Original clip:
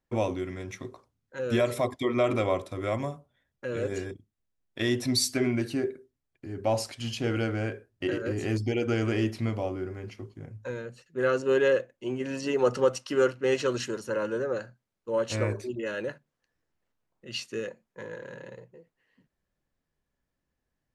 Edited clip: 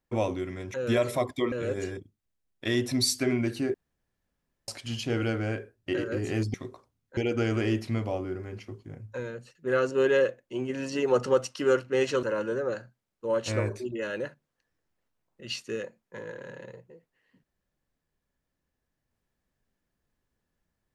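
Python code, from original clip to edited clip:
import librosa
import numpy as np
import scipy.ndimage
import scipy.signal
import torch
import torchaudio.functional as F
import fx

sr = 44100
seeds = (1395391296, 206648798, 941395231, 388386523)

y = fx.edit(x, sr, fx.move(start_s=0.74, length_s=0.63, to_s=8.68),
    fx.cut(start_s=2.15, length_s=1.51),
    fx.room_tone_fill(start_s=5.88, length_s=0.94),
    fx.cut(start_s=13.74, length_s=0.33), tone=tone)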